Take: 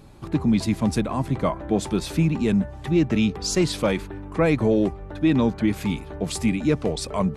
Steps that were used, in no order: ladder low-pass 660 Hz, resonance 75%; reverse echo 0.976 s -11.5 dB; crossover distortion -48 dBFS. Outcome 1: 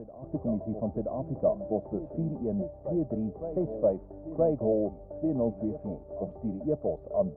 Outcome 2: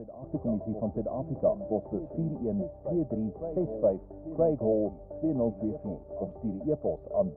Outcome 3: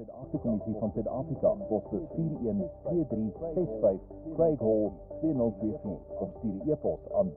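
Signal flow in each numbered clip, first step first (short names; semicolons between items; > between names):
reverse echo > crossover distortion > ladder low-pass; crossover distortion > reverse echo > ladder low-pass; crossover distortion > ladder low-pass > reverse echo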